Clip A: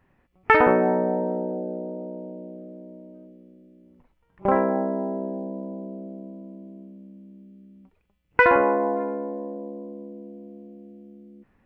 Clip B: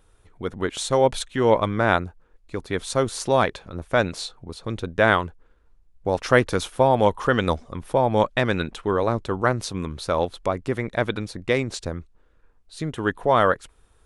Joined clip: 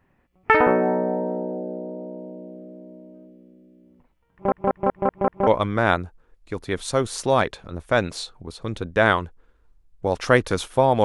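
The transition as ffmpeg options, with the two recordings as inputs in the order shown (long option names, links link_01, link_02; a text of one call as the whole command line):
ffmpeg -i cue0.wav -i cue1.wav -filter_complex "[0:a]apad=whole_dur=11.04,atrim=end=11.04,asplit=6[link_01][link_02][link_03][link_04][link_05][link_06];[link_01]atrim=end=4.522[link_07];[link_02]atrim=start=4.328:end=4.522[link_08];[link_03]atrim=start=4.328:end=4.522[link_09];[link_04]atrim=start=4.328:end=4.522[link_10];[link_05]atrim=start=4.328:end=4.522[link_11];[link_06]atrim=start=4.328:end=4.522[link_12];[1:a]atrim=start=1.488:end=7.06[link_13];[link_07][link_08]acrossfade=duration=0.004:curve1=hsin:curve2=hsin[link_14];[link_14][link_09]acrossfade=duration=0.004:curve1=hsin:curve2=hsin[link_15];[link_15][link_10]acrossfade=duration=0.004:curve1=hsin:curve2=hsin[link_16];[link_16][link_11]acrossfade=duration=0.004:curve1=hsin:curve2=hsin[link_17];[link_17][link_12]acrossfade=duration=0.004:curve1=hsin:curve2=hsin[link_18];[link_18][link_13]acrossfade=duration=0.004:curve1=hsin:curve2=hsin" out.wav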